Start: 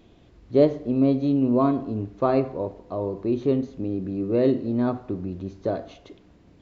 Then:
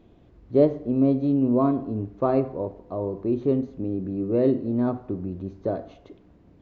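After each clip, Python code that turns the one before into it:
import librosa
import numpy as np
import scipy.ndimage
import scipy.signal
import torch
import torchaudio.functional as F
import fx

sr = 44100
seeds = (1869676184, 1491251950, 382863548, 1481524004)

y = fx.high_shelf(x, sr, hz=2100.0, db=-12.0)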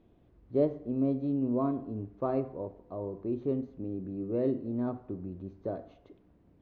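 y = fx.lowpass(x, sr, hz=3600.0, slope=6)
y = y * 10.0 ** (-8.5 / 20.0)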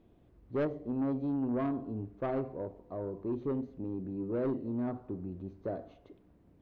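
y = 10.0 ** (-26.5 / 20.0) * np.tanh(x / 10.0 ** (-26.5 / 20.0))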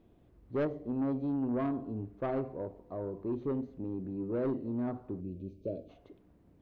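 y = fx.spec_box(x, sr, start_s=5.21, length_s=0.68, low_hz=650.0, high_hz=2200.0, gain_db=-22)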